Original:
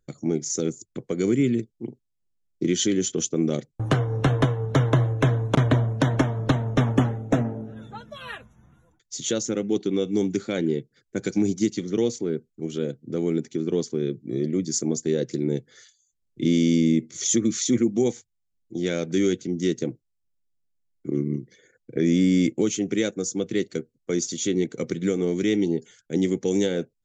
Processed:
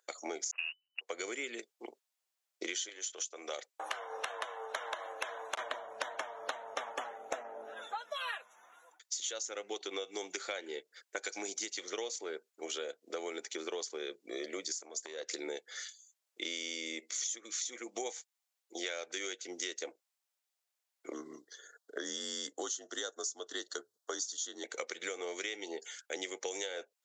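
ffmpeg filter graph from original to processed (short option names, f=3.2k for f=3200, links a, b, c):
-filter_complex "[0:a]asettb=1/sr,asplit=3[a][b][c];[a]atrim=end=0.514[d];[b]atrim=start=0.51:end=1.01,asetpts=PTS-STARTPTS,afade=t=in:d=0.004:c=qsin,afade=t=out:st=0.496:d=0.004:c=qsin,aeval=exprs='val(0)+0.5*0.0251*sgn(val(0))':c=same,agate=range=-44dB:threshold=-27dB:ratio=16:release=100:detection=peak,lowpass=f=2.6k:t=q:w=0.5098,lowpass=f=2.6k:t=q:w=0.6013,lowpass=f=2.6k:t=q:w=0.9,lowpass=f=2.6k:t=q:w=2.563,afreqshift=-3000[e];[c]atrim=start=1.006[f];[d][e]acrossfade=d=0.004:c1=hsin:c2=qsin[g];[g][f]acrossfade=d=0.004:c1=qsin:c2=hsin,asettb=1/sr,asplit=3[h][i][j];[h]atrim=end=2.894[k];[i]atrim=start=2.89:end=5.59,asetpts=PTS-STARTPTS,afade=t=in:d=0.004:c=qsin,afade=t=out:st=2.696:d=0.004:c=qsin,highpass=f=510:p=1,acompressor=threshold=-29dB:ratio=2:attack=3.2:release=140:knee=1:detection=peak[l];[j]atrim=start=5.586[m];[k][l]acrossfade=d=0.004:c1=hsin:c2=qsin[n];[n][m]acrossfade=d=0.004:c1=qsin:c2=hsin,asettb=1/sr,asplit=3[o][p][q];[o]atrim=end=14.724[r];[p]atrim=start=14.72:end=15.3,asetpts=PTS-STARTPTS,afade=t=in:d=0.004:c=qsin,afade=t=out:st=0.576:d=0.004:c=qsin,bandreject=f=850:w=9.4,acompressor=threshold=-32dB:ratio=12:attack=3.2:release=140:knee=1:detection=peak[s];[q]atrim=start=15.296[t];[r][s]acrossfade=d=0.004:c1=hsin:c2=qsin[u];[u][t]acrossfade=d=0.004:c1=qsin:c2=hsin,asettb=1/sr,asplit=3[v][w][x];[v]atrim=end=21.124[y];[w]atrim=start=21.12:end=24.64,asetpts=PTS-STARTPTS,afade=t=in:d=0.004:c=qsin,afade=t=out:st=3.516:d=0.004:c=qsin,asuperstop=centerf=2400:order=4:qfactor=1.5,afreqshift=-45,bandreject=f=60:t=h:w=6,bandreject=f=120:t=h:w=6[z];[x]atrim=start=24.636[aa];[y][z]acrossfade=d=0.004:c1=hsin:c2=qsin[ab];[ab][aa]acrossfade=d=0.004:c1=qsin:c2=hsin,highpass=f=630:w=0.5412,highpass=f=630:w=1.3066,acompressor=threshold=-43dB:ratio=12,volume=7.5dB"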